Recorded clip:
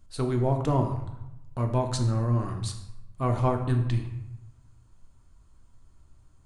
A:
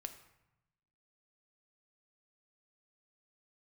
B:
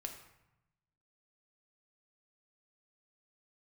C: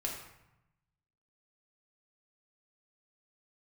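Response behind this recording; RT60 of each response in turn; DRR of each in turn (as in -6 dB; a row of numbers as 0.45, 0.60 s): B; 0.90, 0.90, 0.90 s; 7.5, 3.0, -2.0 dB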